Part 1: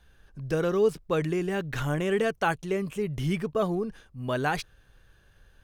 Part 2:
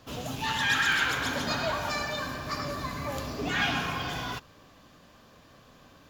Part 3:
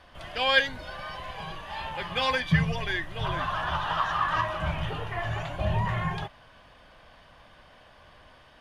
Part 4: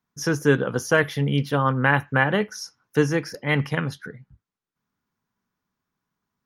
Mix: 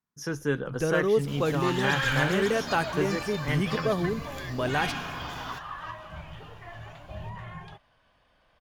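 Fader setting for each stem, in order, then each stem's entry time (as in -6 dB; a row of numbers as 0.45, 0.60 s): -0.5, -5.0, -12.0, -9.0 dB; 0.30, 1.20, 1.50, 0.00 s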